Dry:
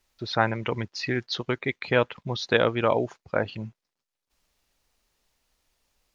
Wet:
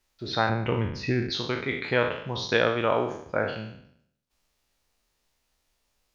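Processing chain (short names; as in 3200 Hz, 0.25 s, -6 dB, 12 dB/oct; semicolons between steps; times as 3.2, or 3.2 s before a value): spectral trails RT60 0.69 s; 0.49–1.3 tilt -2.5 dB/oct; gain -3.5 dB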